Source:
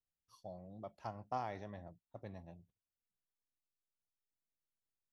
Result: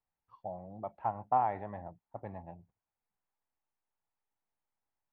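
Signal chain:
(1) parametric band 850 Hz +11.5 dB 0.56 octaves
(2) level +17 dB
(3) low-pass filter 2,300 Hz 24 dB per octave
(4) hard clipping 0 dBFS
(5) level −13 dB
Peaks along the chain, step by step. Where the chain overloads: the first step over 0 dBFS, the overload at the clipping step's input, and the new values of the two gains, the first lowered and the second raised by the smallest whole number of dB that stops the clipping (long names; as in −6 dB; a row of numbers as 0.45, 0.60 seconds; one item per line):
−21.5, −4.5, −4.5, −4.5, −17.5 dBFS
no step passes full scale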